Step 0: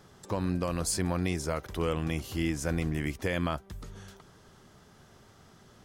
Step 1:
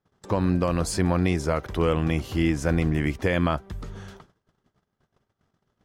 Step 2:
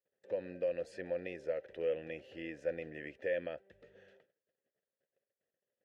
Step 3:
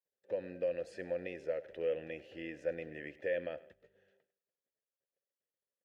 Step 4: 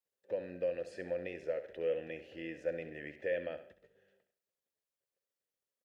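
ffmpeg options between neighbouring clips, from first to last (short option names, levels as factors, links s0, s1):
-af "agate=range=0.0251:threshold=0.00251:ratio=16:detection=peak,highshelf=f=4900:g=-11.5,volume=2.37"
-filter_complex "[0:a]asplit=3[s0][s1][s2];[s0]bandpass=f=530:t=q:w=8,volume=1[s3];[s1]bandpass=f=1840:t=q:w=8,volume=0.501[s4];[s2]bandpass=f=2480:t=q:w=8,volume=0.355[s5];[s3][s4][s5]amix=inputs=3:normalize=0,volume=0.631"
-af "aecho=1:1:102|204|306:0.112|0.0471|0.0198,agate=range=0.316:threshold=0.00158:ratio=16:detection=peak"
-af "aecho=1:1:67|134|201:0.251|0.0829|0.0274"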